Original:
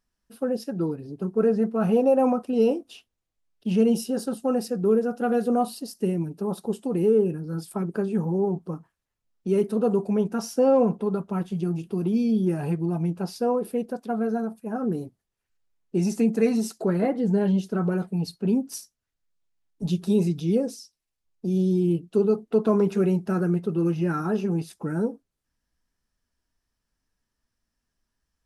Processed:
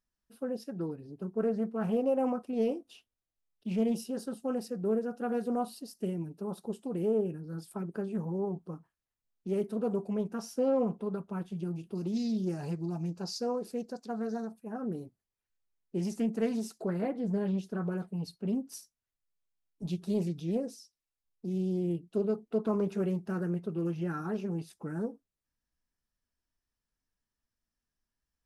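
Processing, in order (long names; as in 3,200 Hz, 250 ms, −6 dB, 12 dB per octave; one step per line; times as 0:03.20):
0:11.95–0:14.52: flat-topped bell 5,600 Hz +12.5 dB 1.1 octaves
highs frequency-modulated by the lows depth 0.2 ms
level −9 dB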